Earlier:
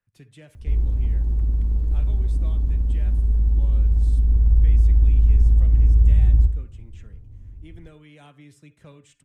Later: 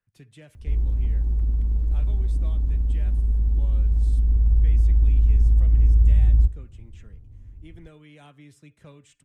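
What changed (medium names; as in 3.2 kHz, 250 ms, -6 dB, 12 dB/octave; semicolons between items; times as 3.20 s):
speech: send -6.0 dB; background: send -11.0 dB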